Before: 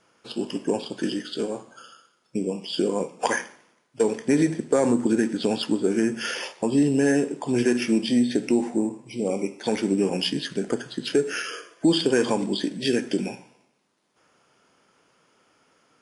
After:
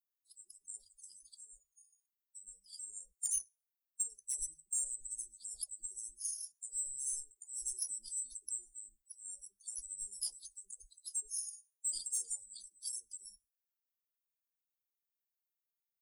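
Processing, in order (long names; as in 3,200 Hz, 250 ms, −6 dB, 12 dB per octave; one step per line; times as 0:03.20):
spectral dynamics exaggerated over time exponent 2
inverse Chebyshev band-stop filter 120–2,800 Hz, stop band 60 dB
soft clipping −37.5 dBFS, distortion −18 dB
all-pass dispersion lows, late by 97 ms, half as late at 610 Hz
level +12.5 dB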